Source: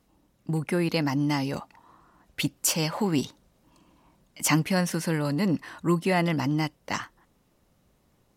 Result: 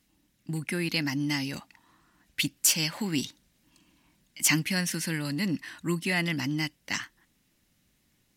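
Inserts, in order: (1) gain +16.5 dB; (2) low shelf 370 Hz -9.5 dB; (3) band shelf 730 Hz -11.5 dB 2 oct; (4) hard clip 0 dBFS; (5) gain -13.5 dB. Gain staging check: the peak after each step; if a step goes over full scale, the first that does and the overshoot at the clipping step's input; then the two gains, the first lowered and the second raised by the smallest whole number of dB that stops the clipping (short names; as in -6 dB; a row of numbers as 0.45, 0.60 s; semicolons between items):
+6.5, +6.0, +6.0, 0.0, -13.5 dBFS; step 1, 6.0 dB; step 1 +10.5 dB, step 5 -7.5 dB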